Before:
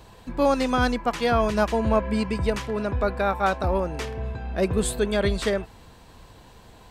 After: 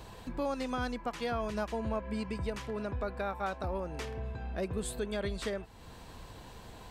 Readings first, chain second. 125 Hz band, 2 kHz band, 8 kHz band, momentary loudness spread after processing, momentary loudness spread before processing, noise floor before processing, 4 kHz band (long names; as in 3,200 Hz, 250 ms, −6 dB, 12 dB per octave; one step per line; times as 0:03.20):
−11.0 dB, −12.0 dB, −11.0 dB, 15 LU, 9 LU, −50 dBFS, −11.0 dB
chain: downward compressor 2 to 1, threshold −42 dBFS, peak gain reduction 14 dB